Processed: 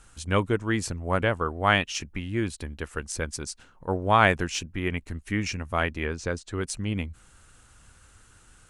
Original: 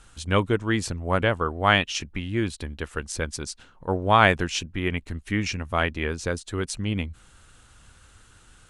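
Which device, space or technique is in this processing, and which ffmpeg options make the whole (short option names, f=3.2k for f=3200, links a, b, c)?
exciter from parts: -filter_complex "[0:a]asplit=2[a][b];[b]highpass=f=3.3k:w=0.5412,highpass=f=3.3k:w=1.3066,asoftclip=type=tanh:threshold=-21dB,volume=-7dB[c];[a][c]amix=inputs=2:normalize=0,asettb=1/sr,asplit=3[d][e][f];[d]atrim=end=6.064[g];[e]atrim=start=6.06:end=6.61,asetpts=PTS-STARTPTS,afade=t=in:d=0.004:c=qsin,afade=t=out:st=0.546:d=0.004:c=qsin,lowpass=6.4k[h];[f]atrim=start=6.606[i];[g][h]acrossfade=d=0.004:c1=hsin:c2=qsin[j];[j][i]acrossfade=d=0.004:c1=qsin:c2=hsin,volume=-2dB"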